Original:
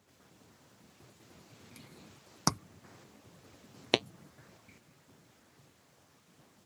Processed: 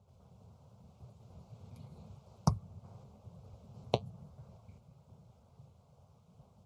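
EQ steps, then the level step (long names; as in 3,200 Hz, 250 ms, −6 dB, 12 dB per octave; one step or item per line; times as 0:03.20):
spectral tilt −4 dB per octave
phaser with its sweep stopped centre 740 Hz, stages 4
−1.5 dB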